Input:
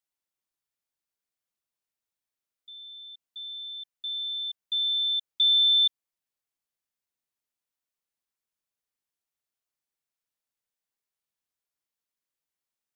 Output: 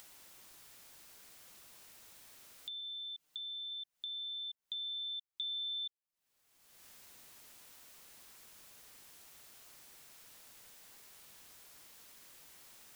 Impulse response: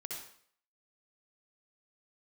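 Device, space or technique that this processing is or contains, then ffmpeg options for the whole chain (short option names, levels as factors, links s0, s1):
upward and downward compression: -filter_complex "[0:a]asettb=1/sr,asplit=3[s0][s1][s2];[s0]atrim=end=2.804[s3];[s1]atrim=start=2.8:end=3.72,asetpts=PTS-STARTPTS,afade=t=in:d=0.004:c=qsin,afade=t=out:st=0.916:d=0.004:c=qsin,aecho=1:1:6.6:0.84,atrim=end_sample=40572[s4];[s2]atrim=start=3.716[s5];[s3][s4]acrossfade=d=0.004:c1=hsin:c2=qsin[s6];[s6][s5]acrossfade=d=0.004:c1=qsin:c2=hsin,acompressor=mode=upward:threshold=0.0251:ratio=2.5,acompressor=threshold=0.00708:ratio=4"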